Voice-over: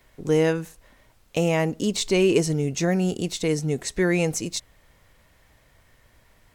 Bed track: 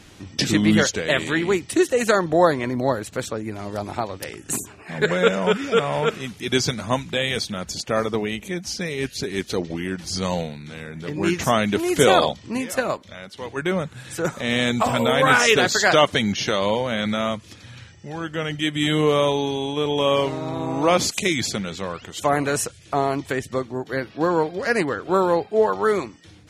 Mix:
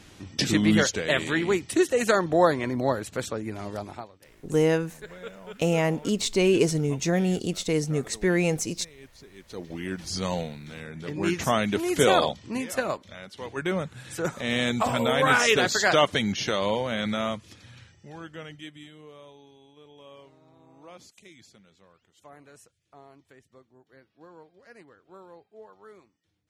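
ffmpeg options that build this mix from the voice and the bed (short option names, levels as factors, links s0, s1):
-filter_complex "[0:a]adelay=4250,volume=0.841[s0];[1:a]volume=5.31,afade=t=out:st=3.65:d=0.47:silence=0.112202,afade=t=in:st=9.44:d=0.48:silence=0.125893,afade=t=out:st=17.22:d=1.69:silence=0.0562341[s1];[s0][s1]amix=inputs=2:normalize=0"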